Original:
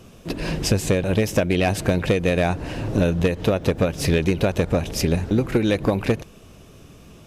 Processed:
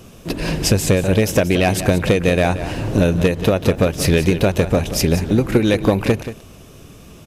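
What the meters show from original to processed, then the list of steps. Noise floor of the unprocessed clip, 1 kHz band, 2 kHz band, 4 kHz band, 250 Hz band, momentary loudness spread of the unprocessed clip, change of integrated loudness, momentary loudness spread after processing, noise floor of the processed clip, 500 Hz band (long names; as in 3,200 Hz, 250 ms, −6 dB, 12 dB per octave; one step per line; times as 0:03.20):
−47 dBFS, +4.5 dB, +4.5 dB, +5.0 dB, +4.5 dB, 5 LU, +4.5 dB, 5 LU, −42 dBFS, +4.5 dB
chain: high-shelf EQ 8,700 Hz +6 dB
on a send: single-tap delay 180 ms −12.5 dB
on the sum: level +4 dB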